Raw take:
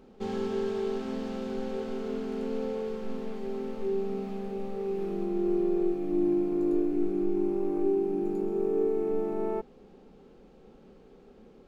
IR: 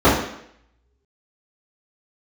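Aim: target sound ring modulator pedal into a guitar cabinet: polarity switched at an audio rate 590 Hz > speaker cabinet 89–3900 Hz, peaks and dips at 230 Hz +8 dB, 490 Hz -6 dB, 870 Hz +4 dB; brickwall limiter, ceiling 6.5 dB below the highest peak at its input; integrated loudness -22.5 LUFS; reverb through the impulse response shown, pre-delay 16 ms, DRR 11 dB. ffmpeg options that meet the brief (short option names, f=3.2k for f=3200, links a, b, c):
-filter_complex "[0:a]alimiter=limit=-22.5dB:level=0:latency=1,asplit=2[a][b];[1:a]atrim=start_sample=2205,adelay=16[c];[b][c]afir=irnorm=-1:irlink=0,volume=-37.5dB[d];[a][d]amix=inputs=2:normalize=0,aeval=exprs='val(0)*sgn(sin(2*PI*590*n/s))':c=same,highpass=89,equalizer=f=230:t=q:w=4:g=8,equalizer=f=490:t=q:w=4:g=-6,equalizer=f=870:t=q:w=4:g=4,lowpass=f=3.9k:w=0.5412,lowpass=f=3.9k:w=1.3066,volume=5dB"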